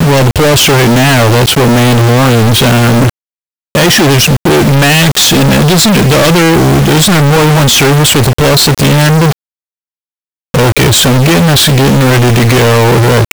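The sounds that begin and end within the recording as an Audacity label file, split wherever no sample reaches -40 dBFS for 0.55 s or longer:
3.750000	9.330000	sound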